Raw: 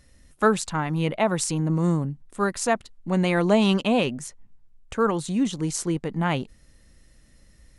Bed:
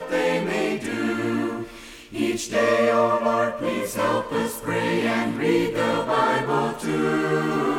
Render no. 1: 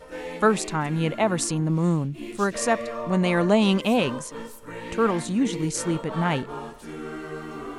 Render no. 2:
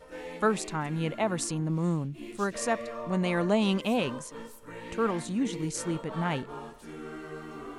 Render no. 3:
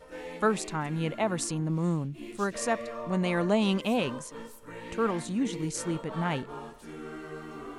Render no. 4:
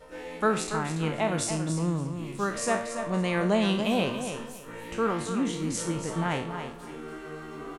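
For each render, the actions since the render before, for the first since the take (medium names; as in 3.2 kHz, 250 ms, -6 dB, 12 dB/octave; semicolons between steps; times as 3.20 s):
add bed -13 dB
trim -6 dB
no audible change
spectral sustain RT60 0.45 s; feedback delay 283 ms, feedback 22%, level -8.5 dB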